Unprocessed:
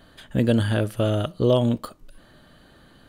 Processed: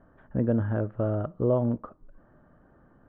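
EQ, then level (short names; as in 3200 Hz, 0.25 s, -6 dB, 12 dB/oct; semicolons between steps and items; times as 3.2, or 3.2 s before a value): inverse Chebyshev low-pass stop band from 7600 Hz, stop band 80 dB; -5.0 dB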